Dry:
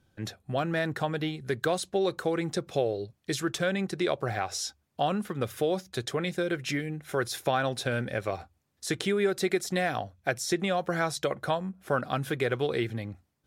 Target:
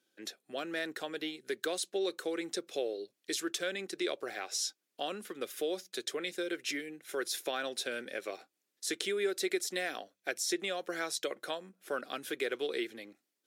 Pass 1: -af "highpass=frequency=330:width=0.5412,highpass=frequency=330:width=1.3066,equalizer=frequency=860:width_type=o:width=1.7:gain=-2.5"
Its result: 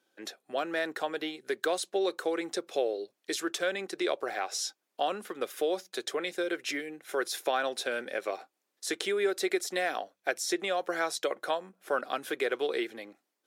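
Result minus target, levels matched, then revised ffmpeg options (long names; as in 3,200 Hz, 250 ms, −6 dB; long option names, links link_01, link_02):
1,000 Hz band +5.0 dB
-af "highpass=frequency=330:width=0.5412,highpass=frequency=330:width=1.3066,equalizer=frequency=860:width_type=o:width=1.7:gain=-13"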